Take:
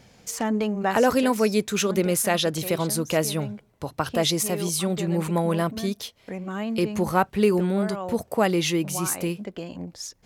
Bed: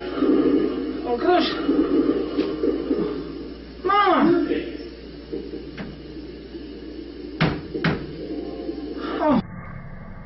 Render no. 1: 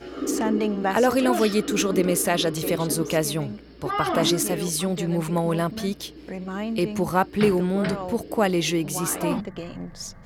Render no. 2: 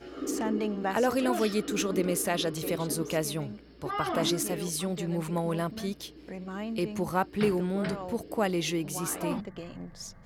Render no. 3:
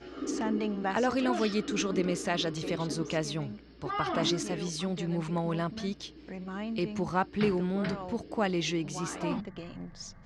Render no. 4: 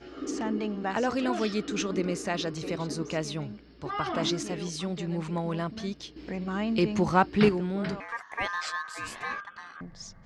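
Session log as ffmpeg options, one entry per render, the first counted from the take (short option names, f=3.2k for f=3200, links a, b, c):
-filter_complex "[1:a]volume=-8.5dB[a];[0:a][a]amix=inputs=2:normalize=0"
-af "volume=-6.5dB"
-af "lowpass=f=6.6k:w=0.5412,lowpass=f=6.6k:w=1.3066,equalizer=f=510:w=1.8:g=-3.5"
-filter_complex "[0:a]asettb=1/sr,asplit=3[a][b][c];[a]atrim=end=1.964[d];[b]atrim=start=1.96:end=3.18,asetpts=PTS-STARTPTS,afade=t=in:d=0.004:c=qsin,afade=t=out:st=1.216:d=0.004:c=qsin,equalizer=f=3.3k:w=5.9:g=-6.5[e];[c]atrim=start=3.176[f];[d][e]acrossfade=d=0.004:c1=hsin:c2=qsin[g];[g][f]acrossfade=d=0.004:c1=qsin:c2=hsin,asettb=1/sr,asplit=3[h][i][j];[h]atrim=end=6.164[k];[i]atrim=start=6.16:end=7.49,asetpts=PTS-STARTPTS,afade=t=in:d=0.004:c=qsin,afade=t=out:st=1.326:d=0.004:c=qsin,acontrast=66[l];[j]atrim=start=7.486[m];[k][l]acrossfade=d=0.004:c1=hsin:c2=qsin[n];[n][m]acrossfade=d=0.004:c1=qsin:c2=hsin,asettb=1/sr,asplit=3[o][p][q];[o]atrim=end=8.004[r];[p]atrim=start=8:end=9.81,asetpts=PTS-STARTPTS,afade=t=in:d=0.004:c=qsin,afade=t=out:st=1.806:d=0.004:c=qsin,aeval=exprs='val(0)*sin(2*PI*1400*n/s)':c=same[s];[q]atrim=start=9.806[t];[r][s]acrossfade=d=0.004:c1=hsin:c2=qsin[u];[u][t]acrossfade=d=0.004:c1=qsin:c2=hsin"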